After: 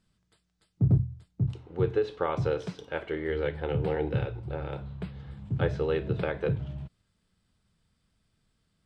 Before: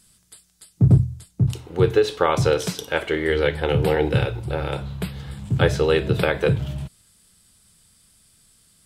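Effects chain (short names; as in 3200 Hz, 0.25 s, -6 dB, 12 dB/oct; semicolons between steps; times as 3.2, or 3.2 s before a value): tape spacing loss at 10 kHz 25 dB; gain -8 dB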